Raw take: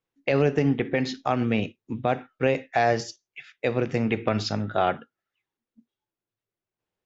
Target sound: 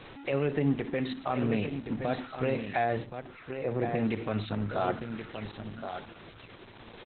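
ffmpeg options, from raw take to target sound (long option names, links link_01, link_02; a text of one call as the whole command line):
ffmpeg -i in.wav -filter_complex "[0:a]aeval=exprs='val(0)+0.5*0.0188*sgn(val(0))':channel_layout=same,alimiter=limit=-14dB:level=0:latency=1:release=65,asplit=3[link_01][link_02][link_03];[link_01]afade=type=out:start_time=1.01:duration=0.02[link_04];[link_02]bandreject=frequency=60:width_type=h:width=6,bandreject=frequency=120:width_type=h:width=6,bandreject=frequency=180:width_type=h:width=6,bandreject=frequency=240:width_type=h:width=6,bandreject=frequency=300:width_type=h:width=6,bandreject=frequency=360:width_type=h:width=6,bandreject=frequency=420:width_type=h:width=6,bandreject=frequency=480:width_type=h:width=6,afade=type=in:start_time=1.01:duration=0.02,afade=type=out:start_time=1.42:duration=0.02[link_05];[link_03]afade=type=in:start_time=1.42:duration=0.02[link_06];[link_04][link_05][link_06]amix=inputs=3:normalize=0,asettb=1/sr,asplit=3[link_07][link_08][link_09];[link_07]atrim=end=3.064[link_10];[link_08]atrim=start=3.06:end=3.95,asetpts=PTS-STARTPTS,afade=type=in:duration=0.004:curve=qsin,afade=type=out:start_time=0.886:duration=0.004:curve=qsin,lowpass=1300[link_11];[link_09]atrim=start=3.946[link_12];[link_10][link_11]acrossfade=duration=0.004:curve1=hsin:curve2=qsin[link_13];[link_13][link_12]acrossfade=duration=0.004:curve1=qsin:curve2=hsin,aecho=1:1:1072:0.398,volume=-3.5dB" -ar 48000 -c:a libopus -b:a 8k out.opus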